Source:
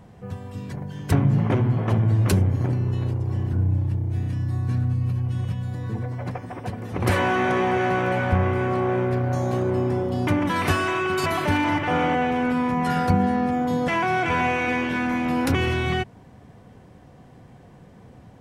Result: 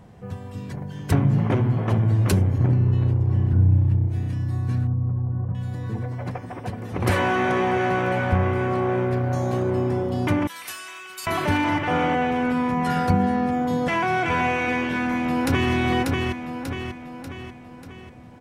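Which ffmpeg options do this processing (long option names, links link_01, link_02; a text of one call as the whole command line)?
ffmpeg -i in.wav -filter_complex "[0:a]asettb=1/sr,asplit=3[link_01][link_02][link_03];[link_01]atrim=end=2.584[link_04];[link_02]atrim=start=2.58:end=4.08,asetpts=PTS-STARTPTS,afade=type=in:duration=0.004:curve=qsin,afade=type=out:start_time=1.496:duration=0.004:curve=qsin,bass=frequency=250:gain=5,treble=frequency=4000:gain=-8[link_05];[link_03]atrim=start=4.076[link_06];[link_04][link_05]acrossfade=duration=0.004:curve1=hsin:curve2=qsin[link_07];[link_07][link_06]acrossfade=duration=0.004:curve1=qsin:curve2=hsin,asettb=1/sr,asplit=3[link_08][link_09][link_10];[link_08]atrim=end=4.874[link_11];[link_09]atrim=start=4.87:end=5.55,asetpts=PTS-STARTPTS,afade=type=in:duration=0.004:curve=qsin,afade=type=out:start_time=0.676:duration=0.004:curve=qsin,lowpass=frequency=1200:width=0.5412,lowpass=frequency=1200:width=1.3066[link_12];[link_10]atrim=start=5.546[link_13];[link_11][link_12]acrossfade=duration=0.004:curve1=hsin:curve2=qsin[link_14];[link_14][link_13]acrossfade=duration=0.004:curve1=qsin:curve2=hsin,asettb=1/sr,asplit=3[link_15][link_16][link_17];[link_15]atrim=end=10.474[link_18];[link_16]atrim=start=10.47:end=11.27,asetpts=PTS-STARTPTS,afade=type=in:duration=0.004:curve=qsin,afade=type=out:start_time=0.796:duration=0.004:curve=qsin,aderivative[link_19];[link_17]atrim=start=11.266[link_20];[link_18][link_19]acrossfade=duration=0.004:curve1=hsin:curve2=qsin[link_21];[link_21][link_20]acrossfade=duration=0.004:curve1=qsin:curve2=hsin,asplit=2[link_22][link_23];[link_23]afade=type=in:start_time=14.93:duration=0.01,afade=type=out:start_time=15.73:duration=0.01,aecho=0:1:590|1180|1770|2360|2950|3540|4130:0.749894|0.374947|0.187474|0.0937368|0.0468684|0.0234342|0.0117171[link_24];[link_22][link_24]amix=inputs=2:normalize=0" out.wav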